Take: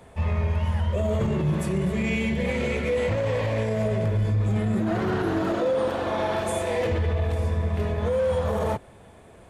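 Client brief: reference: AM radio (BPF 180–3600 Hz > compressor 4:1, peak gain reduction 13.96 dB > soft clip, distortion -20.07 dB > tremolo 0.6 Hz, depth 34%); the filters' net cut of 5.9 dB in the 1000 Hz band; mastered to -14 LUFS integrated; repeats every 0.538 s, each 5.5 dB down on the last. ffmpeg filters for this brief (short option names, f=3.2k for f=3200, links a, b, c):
-af "highpass=180,lowpass=3.6k,equalizer=f=1k:t=o:g=-8,aecho=1:1:538|1076|1614|2152|2690|3228|3766:0.531|0.281|0.149|0.079|0.0419|0.0222|0.0118,acompressor=threshold=-38dB:ratio=4,asoftclip=threshold=-32dB,tremolo=f=0.6:d=0.34,volume=28dB"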